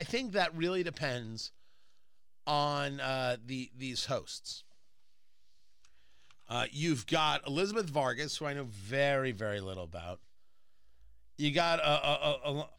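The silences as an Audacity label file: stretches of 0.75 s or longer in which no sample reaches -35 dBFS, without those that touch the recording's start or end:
1.460000	2.470000	silence
4.530000	6.510000	silence
10.140000	11.400000	silence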